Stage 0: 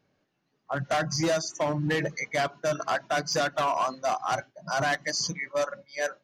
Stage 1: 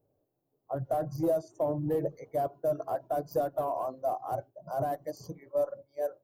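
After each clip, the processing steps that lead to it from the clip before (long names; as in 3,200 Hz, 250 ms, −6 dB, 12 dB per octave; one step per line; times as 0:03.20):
drawn EQ curve 120 Hz 0 dB, 200 Hz −13 dB, 290 Hz −3 dB, 480 Hz +1 dB, 690 Hz −2 dB, 2,000 Hz −29 dB, 6,400 Hz −25 dB, 13,000 Hz +7 dB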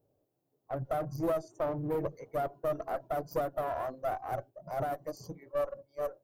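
one-sided soft clipper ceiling −32.5 dBFS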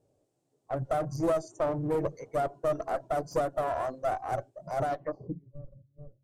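low-pass filter sweep 8,100 Hz → 130 Hz, 0:04.86–0:05.42
level +3.5 dB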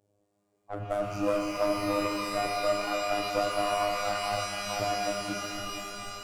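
phases set to zero 102 Hz
reverb with rising layers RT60 3.7 s, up +12 semitones, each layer −2 dB, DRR 2 dB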